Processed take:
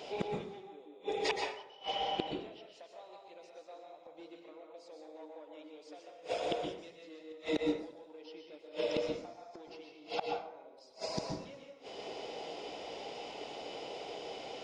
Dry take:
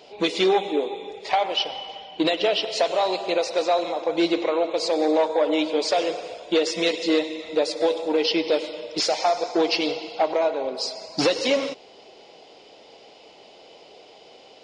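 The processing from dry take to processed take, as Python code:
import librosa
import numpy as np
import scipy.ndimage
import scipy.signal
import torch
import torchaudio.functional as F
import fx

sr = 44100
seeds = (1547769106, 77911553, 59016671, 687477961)

y = fx.peak_eq(x, sr, hz=4300.0, db=-5.5, octaves=0.27)
y = fx.gate_flip(y, sr, shuts_db=-23.0, range_db=-34)
y = fx.rev_plate(y, sr, seeds[0], rt60_s=0.69, hf_ratio=0.55, predelay_ms=110, drr_db=1.5)
y = y * librosa.db_to_amplitude(2.0)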